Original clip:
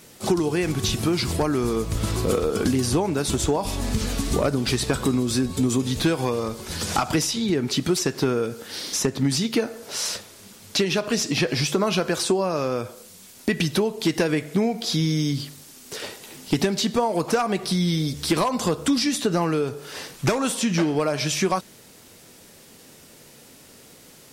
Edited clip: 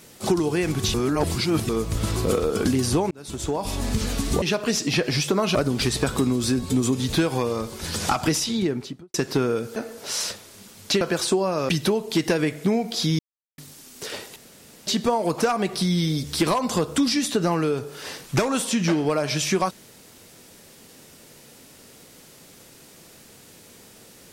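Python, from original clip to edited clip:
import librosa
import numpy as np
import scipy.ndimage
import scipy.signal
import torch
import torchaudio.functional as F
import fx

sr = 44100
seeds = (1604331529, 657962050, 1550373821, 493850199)

y = fx.studio_fade_out(x, sr, start_s=7.4, length_s=0.61)
y = fx.edit(y, sr, fx.reverse_span(start_s=0.94, length_s=0.75),
    fx.fade_in_span(start_s=3.11, length_s=0.64),
    fx.cut(start_s=8.63, length_s=0.98),
    fx.move(start_s=10.86, length_s=1.13, to_s=4.42),
    fx.cut(start_s=12.67, length_s=0.92),
    fx.silence(start_s=15.09, length_s=0.39),
    fx.room_tone_fill(start_s=16.26, length_s=0.51), tone=tone)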